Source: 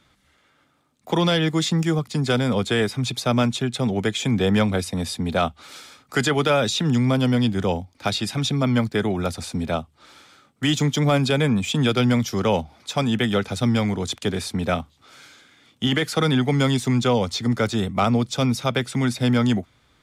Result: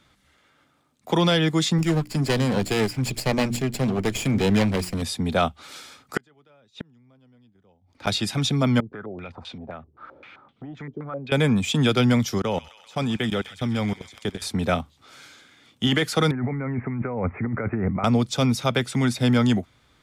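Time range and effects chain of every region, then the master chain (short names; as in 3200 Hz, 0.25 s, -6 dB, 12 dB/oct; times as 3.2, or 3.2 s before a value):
1.78–5.02 minimum comb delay 0.4 ms + notches 60/120/180/240/300/360 Hz
6.17–8.07 LPF 3000 Hz 6 dB/oct + flipped gate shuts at -17 dBFS, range -37 dB
8.8–11.32 compressor 4:1, threshold -38 dBFS + stepped low-pass 7.7 Hz 400–3300 Hz
12.38–14.42 level quantiser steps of 24 dB + thin delay 0.13 s, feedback 67%, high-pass 1800 Hz, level -10 dB
16.31–18.04 steep low-pass 2300 Hz 96 dB/oct + negative-ratio compressor -26 dBFS
whole clip: dry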